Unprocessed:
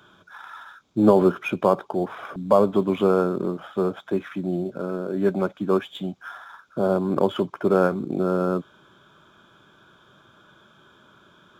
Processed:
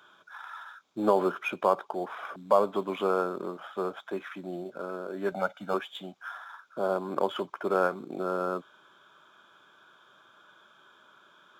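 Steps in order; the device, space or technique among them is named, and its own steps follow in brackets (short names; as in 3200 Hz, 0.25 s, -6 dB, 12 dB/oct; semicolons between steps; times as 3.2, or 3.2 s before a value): filter by subtraction (in parallel: LPF 1000 Hz 12 dB/oct + phase invert); 5.32–5.74 on the sum: comb 1.4 ms, depth 88%; gain -4 dB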